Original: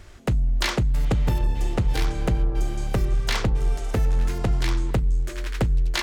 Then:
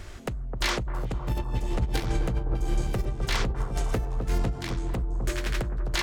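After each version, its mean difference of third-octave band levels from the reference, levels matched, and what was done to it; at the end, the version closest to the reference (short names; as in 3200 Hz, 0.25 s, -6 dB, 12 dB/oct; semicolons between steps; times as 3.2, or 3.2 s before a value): 5.0 dB: limiter -21.5 dBFS, peak gain reduction 9 dB; negative-ratio compressor -28 dBFS, ratio -0.5; analogue delay 0.258 s, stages 2048, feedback 72%, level -7 dB; gain +1.5 dB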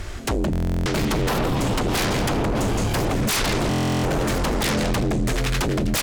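8.5 dB: feedback echo 0.168 s, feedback 36%, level -10 dB; sine folder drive 18 dB, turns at -10.5 dBFS; stuck buffer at 0.51/3.69, samples 1024, times 14; gain -8 dB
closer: first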